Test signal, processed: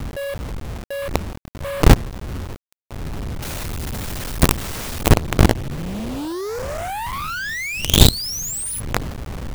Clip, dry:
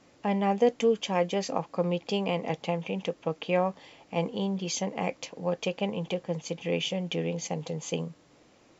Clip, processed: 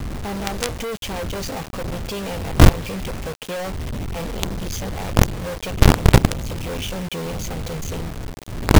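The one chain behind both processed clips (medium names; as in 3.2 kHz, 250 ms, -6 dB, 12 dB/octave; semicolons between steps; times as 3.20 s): wind noise 98 Hz -25 dBFS; companded quantiser 2-bit; trim -1 dB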